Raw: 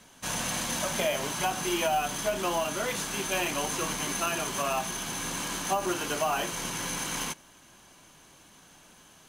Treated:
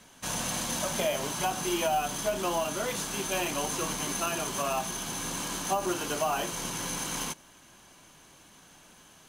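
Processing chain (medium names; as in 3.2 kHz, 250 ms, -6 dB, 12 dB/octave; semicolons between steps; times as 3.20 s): dynamic bell 2 kHz, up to -4 dB, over -43 dBFS, Q 1.2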